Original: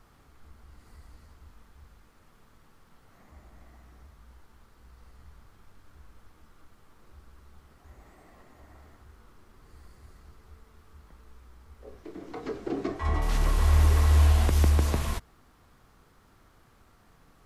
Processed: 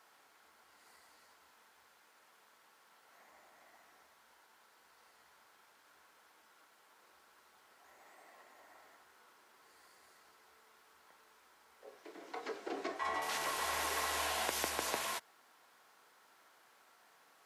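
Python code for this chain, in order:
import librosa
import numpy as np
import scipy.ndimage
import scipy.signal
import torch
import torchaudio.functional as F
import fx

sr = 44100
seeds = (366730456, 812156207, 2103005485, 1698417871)

y = scipy.signal.sosfilt(scipy.signal.butter(2, 670.0, 'highpass', fs=sr, output='sos'), x)
y = fx.notch(y, sr, hz=1200.0, q=10.0)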